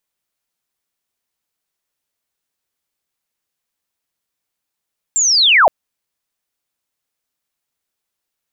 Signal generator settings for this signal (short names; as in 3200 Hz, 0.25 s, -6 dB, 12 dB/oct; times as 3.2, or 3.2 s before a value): chirp linear 7500 Hz -> 540 Hz -12 dBFS -> -5.5 dBFS 0.52 s